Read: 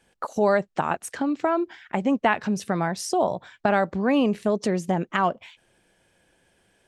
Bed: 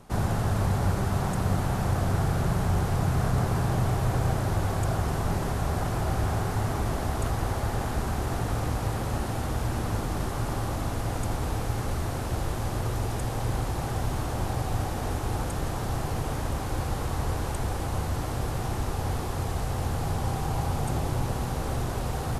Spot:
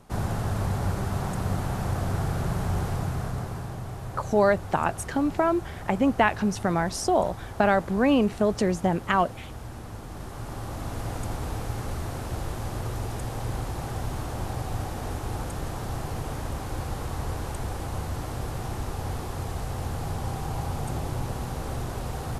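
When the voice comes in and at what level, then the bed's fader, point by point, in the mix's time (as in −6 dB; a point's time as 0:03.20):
3.95 s, 0.0 dB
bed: 0:02.87 −2 dB
0:03.81 −10.5 dB
0:09.98 −10.5 dB
0:11.01 −2.5 dB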